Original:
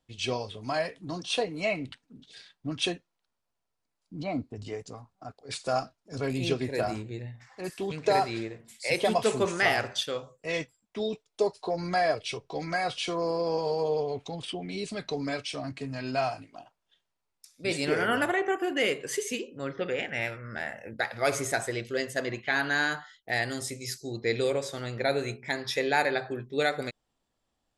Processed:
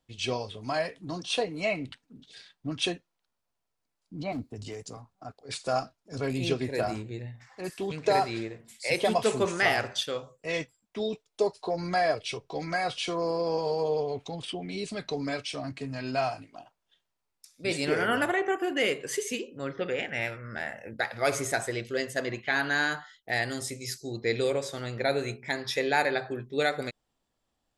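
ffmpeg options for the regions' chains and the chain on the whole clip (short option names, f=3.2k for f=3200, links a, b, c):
-filter_complex "[0:a]asettb=1/sr,asplit=3[a][b][c];[a]atrim=end=4.324[d];[b]atrim=start=4.32:end=4.97,asetpts=PTS-STARTPTS,afade=t=in:d=0.004:c=qsin,afade=t=out:st=0.646:d=0.004:c=qsin,volume=27.5dB,asoftclip=hard,volume=-27.5dB,highshelf=f=5.6k:g=9.5,acrossover=split=250|3000[e][f][g];[f]acompressor=threshold=-37dB:ratio=6:attack=3.2:release=140:knee=2.83:detection=peak[h];[e][h][g]amix=inputs=3:normalize=0[i];[c]atrim=start=4.966[j];[d][i]acrossfade=d=0.004:c1=hsin:c2=qsin[k];[k][j]acrossfade=d=0.004:c1=qsin:c2=hsin"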